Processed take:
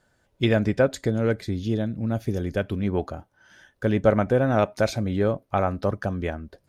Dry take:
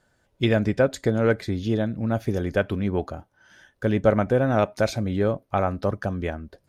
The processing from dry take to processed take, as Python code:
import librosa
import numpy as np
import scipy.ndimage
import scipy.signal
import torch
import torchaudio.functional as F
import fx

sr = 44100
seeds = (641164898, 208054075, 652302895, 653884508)

y = fx.peak_eq(x, sr, hz=1100.0, db=-6.0, octaves=2.6, at=(1.06, 2.83))